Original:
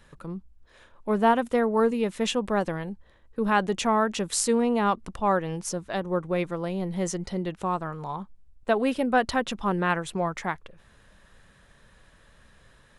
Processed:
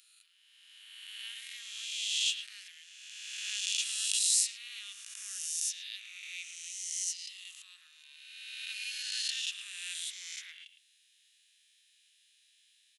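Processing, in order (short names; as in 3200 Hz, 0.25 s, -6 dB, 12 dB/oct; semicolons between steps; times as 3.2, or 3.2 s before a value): spectral swells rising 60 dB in 2.09 s; steep high-pass 2600 Hz 36 dB/oct; speakerphone echo 0.11 s, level -8 dB; gain -3.5 dB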